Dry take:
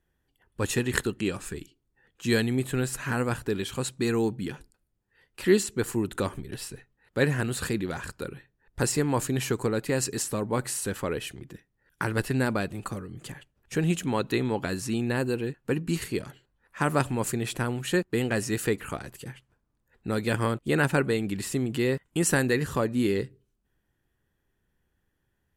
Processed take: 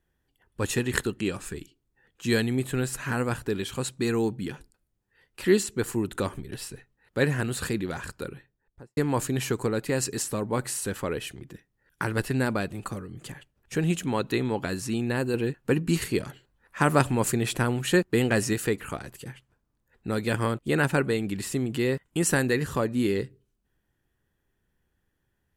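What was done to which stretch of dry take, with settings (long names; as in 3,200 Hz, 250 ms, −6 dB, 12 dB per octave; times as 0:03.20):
0:08.26–0:08.97: fade out and dull
0:15.34–0:18.53: clip gain +3.5 dB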